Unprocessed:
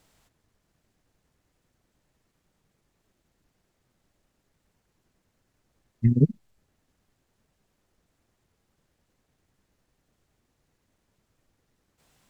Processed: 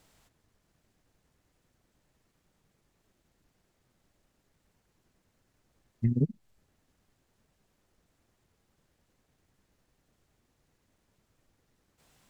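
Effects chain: compression 2:1, threshold -28 dBFS, peak gain reduction 9 dB

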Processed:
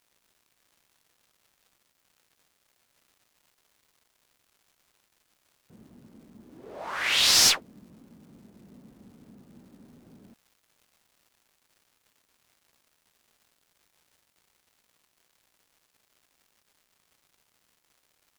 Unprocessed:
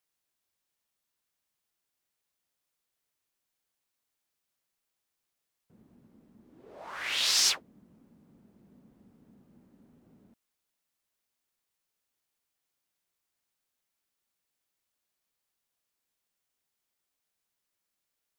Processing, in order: one-sided clip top -26 dBFS; crackle 320 per s -60 dBFS; trim +7.5 dB

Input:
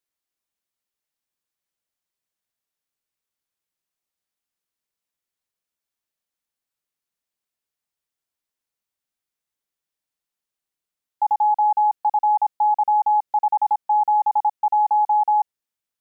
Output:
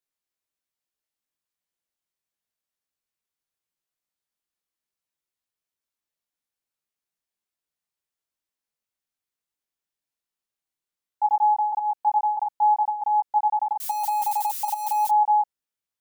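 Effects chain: 13.80–15.09 s: zero-crossing glitches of -24 dBFS; chorus 0.14 Hz, delay 17 ms, depth 4.7 ms

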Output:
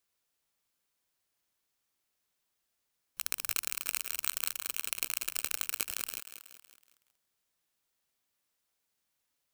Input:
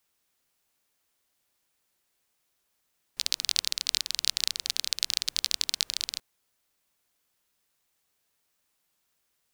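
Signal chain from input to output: bit-reversed sample order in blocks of 64 samples; bit-crushed delay 186 ms, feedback 55%, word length 7-bit, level -9 dB; trim -6 dB

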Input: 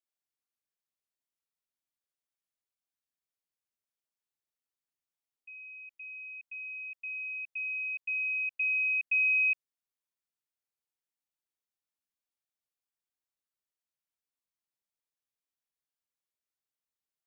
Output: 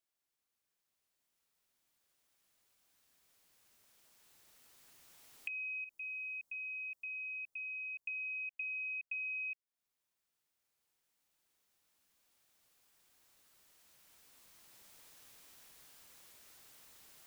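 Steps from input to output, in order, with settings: recorder AGC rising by 5.5 dB/s; 5.84–8.07 s: peaking EQ 2.4 kHz -10.5 dB 1.9 oct; compression, threshold -44 dBFS, peak gain reduction 17 dB; trim +3 dB

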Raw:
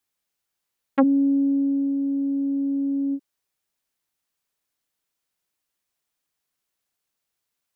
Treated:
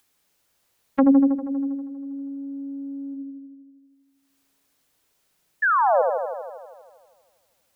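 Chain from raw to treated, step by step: expander -19 dBFS; upward compressor, threshold -35 dBFS; painted sound fall, 5.62–6.02 s, 480–1800 Hz -19 dBFS; on a send: feedback echo behind a low-pass 80 ms, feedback 72%, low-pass 840 Hz, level -3 dB

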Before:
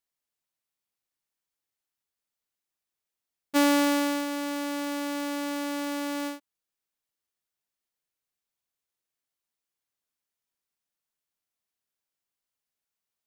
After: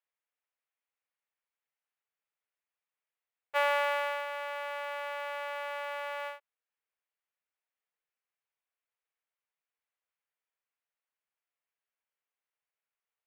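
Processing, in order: elliptic high-pass 440 Hz, stop band 40 dB; resonant high shelf 3.6 kHz -13.5 dB, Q 1.5; trim -2 dB

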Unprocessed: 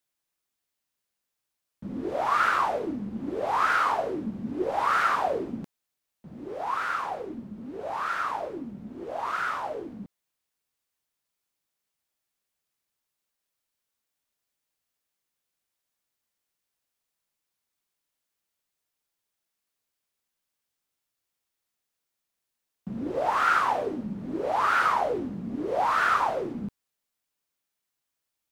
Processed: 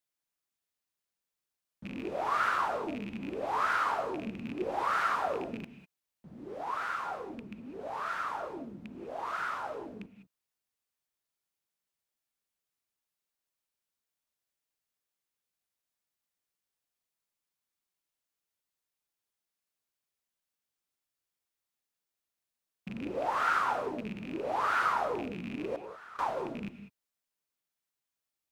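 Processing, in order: rattle on loud lows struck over -35 dBFS, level -27 dBFS; 25.76–26.19 s: gate -18 dBFS, range -21 dB; gated-style reverb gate 220 ms rising, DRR 10 dB; trim -6 dB

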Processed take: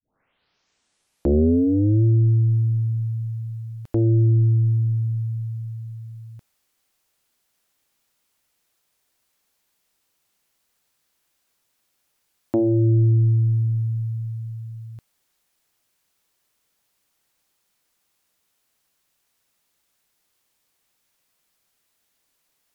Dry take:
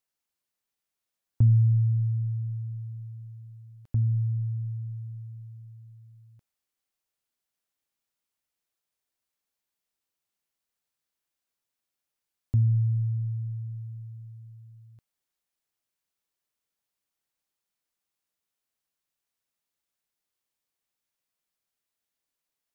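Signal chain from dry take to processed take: tape start-up on the opening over 2.04 s; sine folder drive 12 dB, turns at -13 dBFS; trim -1 dB

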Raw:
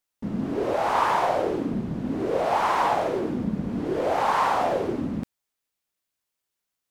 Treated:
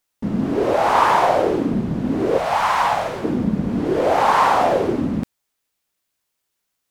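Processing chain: 2.38–3.24 s: peaking EQ 350 Hz -14 dB 1.3 oct; trim +7 dB

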